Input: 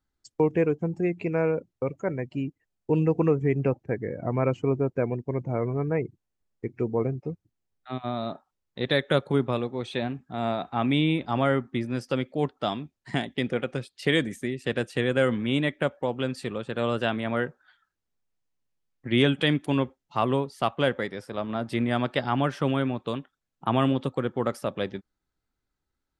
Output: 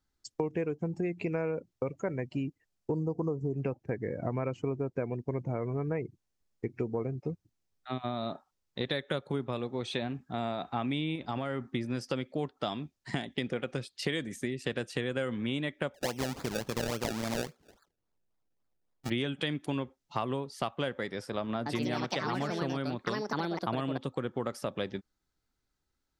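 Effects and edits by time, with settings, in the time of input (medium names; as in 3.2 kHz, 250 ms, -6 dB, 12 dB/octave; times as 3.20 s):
2.91–3.54 s: elliptic band-stop 1.1–4.6 kHz
11.15–11.64 s: compression, threshold -25 dBFS
15.94–19.10 s: decimation with a swept rate 29× 3.6 Hz
21.57–24.49 s: ever faster or slower copies 89 ms, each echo +4 st, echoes 2
whole clip: peaking EQ 5.5 kHz +5 dB 1.1 oct; compression, threshold -29 dBFS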